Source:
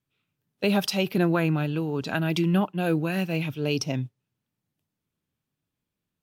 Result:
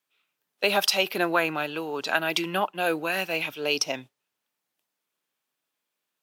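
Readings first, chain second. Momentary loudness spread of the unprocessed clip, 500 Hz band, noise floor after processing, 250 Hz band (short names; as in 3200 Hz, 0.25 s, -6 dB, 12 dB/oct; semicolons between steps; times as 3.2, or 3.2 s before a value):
6 LU, +0.5 dB, -83 dBFS, -8.5 dB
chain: HPF 610 Hz 12 dB/oct; gain +6 dB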